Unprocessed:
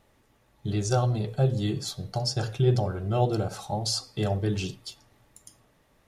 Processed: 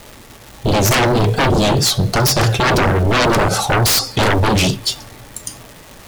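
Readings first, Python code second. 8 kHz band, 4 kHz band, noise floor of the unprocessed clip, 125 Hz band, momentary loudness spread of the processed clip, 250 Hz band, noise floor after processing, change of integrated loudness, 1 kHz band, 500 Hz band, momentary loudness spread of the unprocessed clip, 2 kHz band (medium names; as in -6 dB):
+17.5 dB, +16.5 dB, -65 dBFS, +9.0 dB, 15 LU, +12.5 dB, -40 dBFS, +13.0 dB, +17.0 dB, +12.0 dB, 8 LU, +24.5 dB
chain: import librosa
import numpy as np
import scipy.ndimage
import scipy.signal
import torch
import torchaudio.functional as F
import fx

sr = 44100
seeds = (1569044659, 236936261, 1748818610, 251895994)

y = fx.vibrato(x, sr, rate_hz=4.5, depth_cents=66.0)
y = fx.fold_sine(y, sr, drive_db=19, ceiling_db=-10.5)
y = fx.dmg_crackle(y, sr, seeds[0], per_s=520.0, level_db=-28.0)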